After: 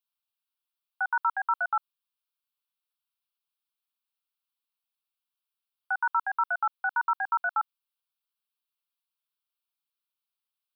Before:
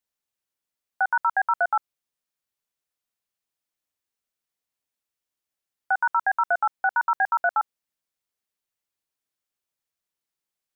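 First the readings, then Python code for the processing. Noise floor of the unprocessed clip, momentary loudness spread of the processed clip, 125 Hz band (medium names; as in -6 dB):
under -85 dBFS, 5 LU, no reading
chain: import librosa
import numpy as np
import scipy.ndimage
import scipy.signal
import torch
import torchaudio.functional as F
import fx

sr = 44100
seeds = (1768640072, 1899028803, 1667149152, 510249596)

y = scipy.signal.sosfilt(scipy.signal.butter(2, 1000.0, 'highpass', fs=sr, output='sos'), x)
y = fx.fixed_phaser(y, sr, hz=1900.0, stages=6)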